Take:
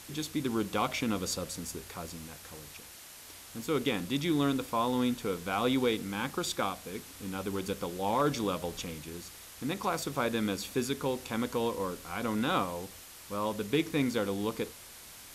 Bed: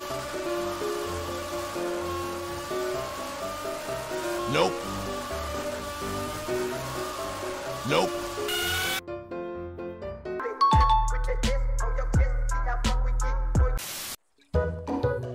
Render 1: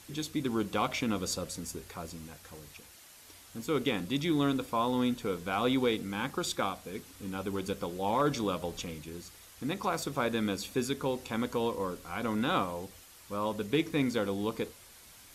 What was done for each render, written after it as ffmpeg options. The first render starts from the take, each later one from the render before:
-af "afftdn=nr=6:nf=-50"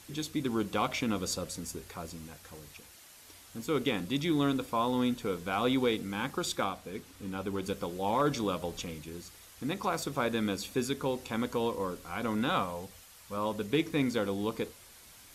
-filter_complex "[0:a]asettb=1/sr,asplit=3[a][b][c];[a]atrim=end=6.644[d];[b]atrim=start=6.64:end=7.63,asetpts=PTS-STARTPTS,afade=t=in:d=0.004:c=qsin,afade=t=out:st=0.986:d=0.004:c=qsin,highshelf=f=5k:g=-4.5[e];[c]atrim=start=7.626[f];[d][e]acrossfade=d=0.004:c1=hsin:c2=qsin[g];[g][f]acrossfade=d=0.004:c1=qsin:c2=hsin,asettb=1/sr,asplit=3[h][i][j];[h]atrim=end=12.494[k];[i]atrim=start=12.49:end=13.37,asetpts=PTS-STARTPTS,afade=t=in:d=0.004:c=qsin,afade=t=out:st=0.876:d=0.004:c=qsin,equalizer=f=330:t=o:w=0.31:g=-13[l];[j]atrim=start=13.366[m];[k][l]acrossfade=d=0.004:c1=hsin:c2=qsin[n];[n][m]acrossfade=d=0.004:c1=qsin:c2=hsin"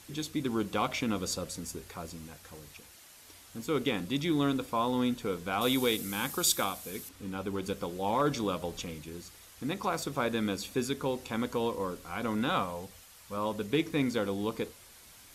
-filter_complex "[0:a]asettb=1/sr,asplit=3[a][b][c];[a]atrim=end=5.614[d];[b]atrim=start=5.61:end=7.09,asetpts=PTS-STARTPTS,afade=t=in:d=0.004:c=qsin,afade=t=out:st=1.476:d=0.004:c=qsin,aemphasis=mode=production:type=75fm[e];[c]atrim=start=7.086[f];[d][e]acrossfade=d=0.004:c1=hsin:c2=qsin[g];[g][f]acrossfade=d=0.004:c1=qsin:c2=hsin"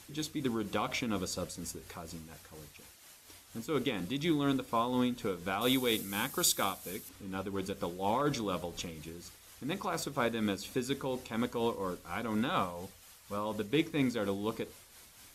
-af "tremolo=f=4.2:d=0.43"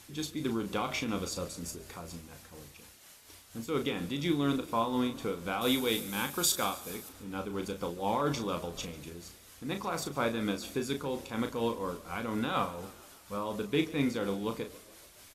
-filter_complex "[0:a]asplit=2[a][b];[b]adelay=35,volume=-8dB[c];[a][c]amix=inputs=2:normalize=0,asplit=6[d][e][f][g][h][i];[e]adelay=142,afreqshift=33,volume=-20dB[j];[f]adelay=284,afreqshift=66,volume=-24dB[k];[g]adelay=426,afreqshift=99,volume=-28dB[l];[h]adelay=568,afreqshift=132,volume=-32dB[m];[i]adelay=710,afreqshift=165,volume=-36.1dB[n];[d][j][k][l][m][n]amix=inputs=6:normalize=0"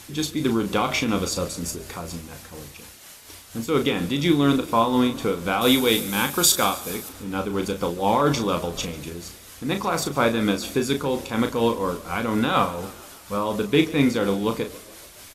-af "volume=10.5dB"

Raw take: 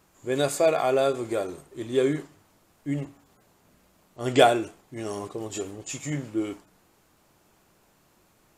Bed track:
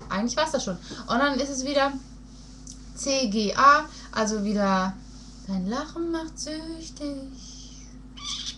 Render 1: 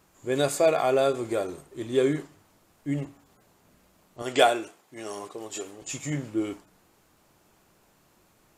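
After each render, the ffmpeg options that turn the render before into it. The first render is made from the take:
-filter_complex "[0:a]asettb=1/sr,asplit=3[a][b][c];[a]atrim=end=4.224[d];[b]atrim=start=4.22:end=5.82,asetpts=PTS-STARTPTS,afade=t=in:d=0.004:c=qsin,afade=t=out:st=1.596:d=0.004:c=qsin,highpass=f=530:p=1[e];[c]atrim=start=5.816[f];[d][e]acrossfade=d=0.004:c1=hsin:c2=qsin[g];[g][f]acrossfade=d=0.004:c1=qsin:c2=hsin"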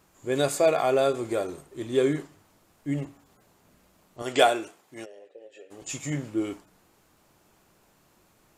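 -filter_complex "[0:a]asplit=3[a][b][c];[a]afade=t=out:st=5.04:d=0.02[d];[b]asplit=3[e][f][g];[e]bandpass=f=530:t=q:w=8,volume=0dB[h];[f]bandpass=f=1.84k:t=q:w=8,volume=-6dB[i];[g]bandpass=f=2.48k:t=q:w=8,volume=-9dB[j];[h][i][j]amix=inputs=3:normalize=0,afade=t=in:st=5.04:d=0.02,afade=t=out:st=5.7:d=0.02[k];[c]afade=t=in:st=5.7:d=0.02[l];[d][k][l]amix=inputs=3:normalize=0"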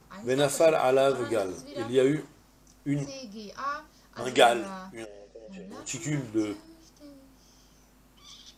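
-filter_complex "[1:a]volume=-17dB[a];[0:a][a]amix=inputs=2:normalize=0"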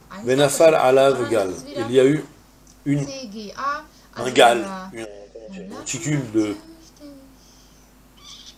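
-af "volume=8dB,alimiter=limit=-1dB:level=0:latency=1"

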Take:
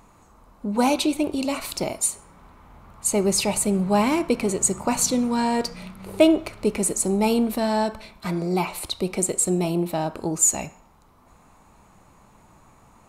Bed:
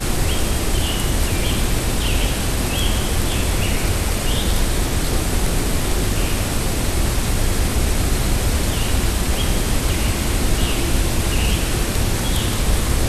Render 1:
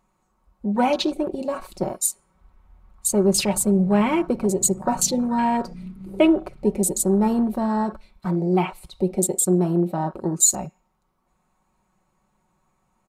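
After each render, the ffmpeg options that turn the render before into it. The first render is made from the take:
-af "afwtdn=0.0282,aecho=1:1:5.4:0.61"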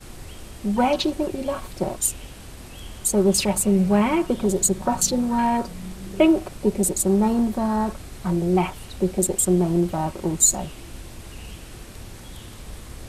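-filter_complex "[1:a]volume=-20dB[a];[0:a][a]amix=inputs=2:normalize=0"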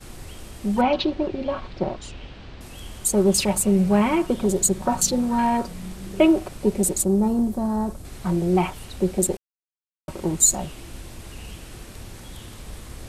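-filter_complex "[0:a]asettb=1/sr,asplit=3[a][b][c];[a]atrim=end=0.814[d];[b]atrim=start=0.81:end=2.61,asetpts=PTS-STARTPTS,afade=t=in:d=0.004:c=qsin,afade=t=out:st=1.796:d=0.004:c=qsin,lowpass=f=4.4k:w=0.5412,lowpass=f=4.4k:w=1.3066[e];[c]atrim=start=2.606[f];[d][e]acrossfade=d=0.004:c1=hsin:c2=qsin[g];[g][f]acrossfade=d=0.004:c1=qsin:c2=hsin,asettb=1/sr,asplit=3[h][i][j];[h]atrim=end=7.044[k];[i]atrim=start=7.04:end=8.05,asetpts=PTS-STARTPTS,afade=t=in:d=0.004:c=qsin,afade=t=out:st=1.006:d=0.004:c=qsin,equalizer=f=2.3k:t=o:w=2.6:g=-11[l];[j]atrim=start=8.046[m];[k][l]acrossfade=d=0.004:c1=hsin:c2=qsin[n];[n][m]acrossfade=d=0.004:c1=qsin:c2=hsin,asplit=3[o][p][q];[o]atrim=end=9.37,asetpts=PTS-STARTPTS,afade=t=out:st=9.366:d=0.004:c=hsin[r];[p]atrim=start=9.37:end=10.08,asetpts=PTS-STARTPTS,volume=0[s];[q]atrim=start=10.08,asetpts=PTS-STARTPTS,afade=t=in:d=0.004:c=hsin[t];[r][s][t]concat=n=3:v=0:a=1"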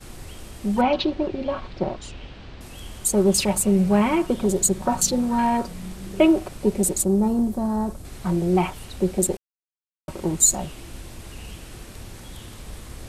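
-af anull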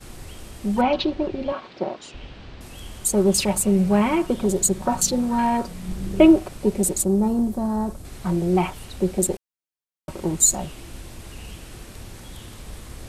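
-filter_complex "[0:a]asettb=1/sr,asplit=3[a][b][c];[a]atrim=end=1.524[d];[b]atrim=start=1.52:end=2.14,asetpts=PTS-STARTPTS,afade=t=in:d=0.004:c=qsin,afade=t=out:st=0.616:d=0.004:c=qsin,highpass=250,lowpass=7.7k[e];[c]atrim=start=2.136[f];[d][e]acrossfade=d=0.004:c1=hsin:c2=qsin[g];[g][f]acrossfade=d=0.004:c1=qsin:c2=hsin,asettb=1/sr,asplit=3[h][i][j];[h]atrim=end=5.884[k];[i]atrim=start=5.88:end=6.36,asetpts=PTS-STARTPTS,afade=t=in:d=0.004:c=qsin,afade=t=out:st=0.476:d=0.004:c=qsin,lowshelf=f=320:g=8.5[l];[j]atrim=start=6.356[m];[k][l]acrossfade=d=0.004:c1=hsin:c2=qsin[n];[n][m]acrossfade=d=0.004:c1=qsin:c2=hsin"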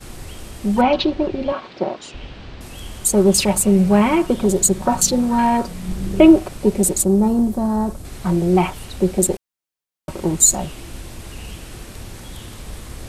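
-af "volume=4.5dB,alimiter=limit=-1dB:level=0:latency=1"

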